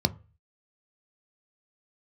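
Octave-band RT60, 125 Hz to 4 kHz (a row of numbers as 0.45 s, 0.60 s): 0.50 s, 0.30 s, 0.35 s, 0.35 s, 0.35 s, 0.25 s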